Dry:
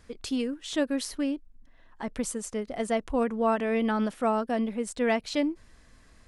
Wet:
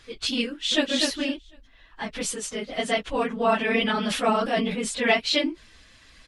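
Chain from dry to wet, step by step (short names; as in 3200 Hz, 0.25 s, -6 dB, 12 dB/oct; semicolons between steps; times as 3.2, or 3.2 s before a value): phase scrambler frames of 50 ms; bell 3300 Hz +14.5 dB 1.9 oct; 0.46–0.86 echo throw 0.25 s, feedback 20%, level -4 dB; 3.62–5.14 sustainer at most 51 dB/s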